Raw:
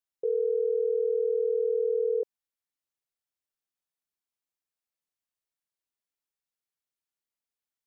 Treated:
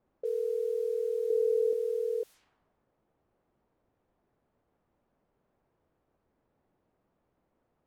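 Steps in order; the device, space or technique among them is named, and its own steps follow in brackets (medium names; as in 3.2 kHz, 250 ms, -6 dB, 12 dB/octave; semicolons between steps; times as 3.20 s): cassette deck with a dynamic noise filter (white noise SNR 25 dB; level-controlled noise filter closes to 540 Hz, open at -28.5 dBFS); 1.30–1.73 s: peaking EQ 370 Hz +9 dB 0.59 oct; trim -4.5 dB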